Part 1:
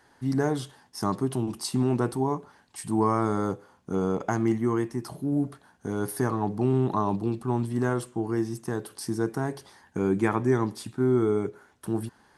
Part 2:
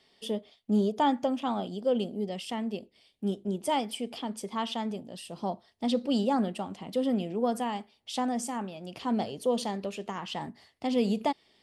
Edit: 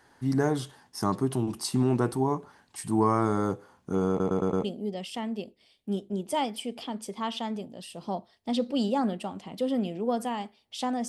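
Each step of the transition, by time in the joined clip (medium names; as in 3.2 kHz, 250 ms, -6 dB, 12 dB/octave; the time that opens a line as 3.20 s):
part 1
4.09 s: stutter in place 0.11 s, 5 plays
4.64 s: go over to part 2 from 1.99 s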